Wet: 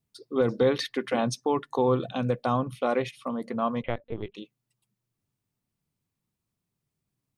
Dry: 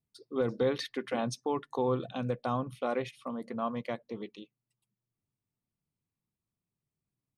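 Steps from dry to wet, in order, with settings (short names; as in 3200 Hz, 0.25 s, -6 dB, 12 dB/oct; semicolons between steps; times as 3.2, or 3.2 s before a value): 3.82–4.35 LPC vocoder at 8 kHz pitch kept; gain +6 dB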